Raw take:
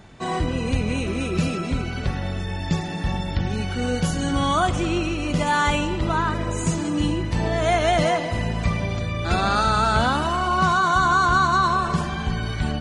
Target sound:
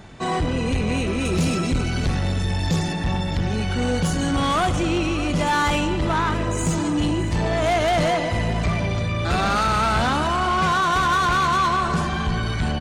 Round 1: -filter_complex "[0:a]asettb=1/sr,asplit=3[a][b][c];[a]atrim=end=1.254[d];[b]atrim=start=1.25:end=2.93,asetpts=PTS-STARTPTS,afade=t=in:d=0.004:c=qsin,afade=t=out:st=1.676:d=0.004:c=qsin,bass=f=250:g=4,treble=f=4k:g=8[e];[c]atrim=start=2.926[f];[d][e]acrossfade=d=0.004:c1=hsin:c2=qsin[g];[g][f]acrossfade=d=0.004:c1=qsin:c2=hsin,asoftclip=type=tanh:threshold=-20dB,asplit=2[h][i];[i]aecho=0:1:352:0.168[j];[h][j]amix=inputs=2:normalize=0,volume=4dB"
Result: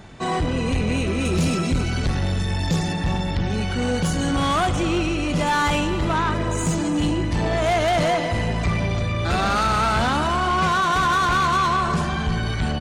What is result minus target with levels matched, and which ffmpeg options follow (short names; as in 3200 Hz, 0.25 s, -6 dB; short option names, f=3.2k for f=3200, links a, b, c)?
echo 0.262 s early
-filter_complex "[0:a]asettb=1/sr,asplit=3[a][b][c];[a]atrim=end=1.254[d];[b]atrim=start=1.25:end=2.93,asetpts=PTS-STARTPTS,afade=t=in:d=0.004:c=qsin,afade=t=out:st=1.676:d=0.004:c=qsin,bass=f=250:g=4,treble=f=4k:g=8[e];[c]atrim=start=2.926[f];[d][e]acrossfade=d=0.004:c1=hsin:c2=qsin[g];[g][f]acrossfade=d=0.004:c1=qsin:c2=hsin,asoftclip=type=tanh:threshold=-20dB,asplit=2[h][i];[i]aecho=0:1:614:0.168[j];[h][j]amix=inputs=2:normalize=0,volume=4dB"